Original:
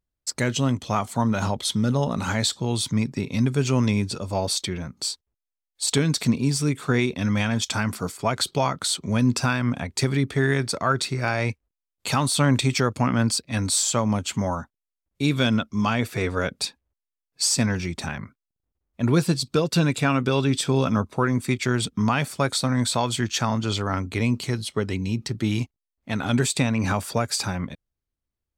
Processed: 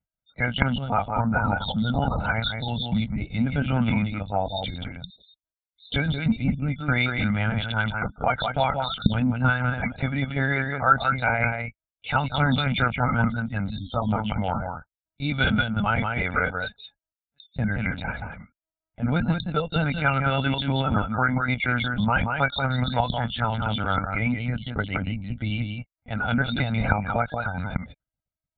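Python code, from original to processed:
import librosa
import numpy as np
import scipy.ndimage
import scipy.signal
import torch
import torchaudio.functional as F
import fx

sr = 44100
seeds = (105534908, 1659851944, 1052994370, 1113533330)

y = x + 10.0 ** (-5.0 / 20.0) * np.pad(x, (int(182 * sr / 1000.0), 0))[:len(x)]
y = fx.spec_topn(y, sr, count=64)
y = fx.peak_eq(y, sr, hz=560.0, db=-4.5, octaves=0.38)
y = fx.lpc_vocoder(y, sr, seeds[0], excitation='pitch_kept', order=10)
y = fx.highpass(y, sr, hz=90.0, slope=6)
y = y + 0.81 * np.pad(y, (int(1.4 * sr / 1000.0), 0))[:len(y)]
y = fx.dynamic_eq(y, sr, hz=1600.0, q=0.86, threshold_db=-35.0, ratio=4.0, max_db=3)
y = F.gain(torch.from_numpy(y), -1.5).numpy()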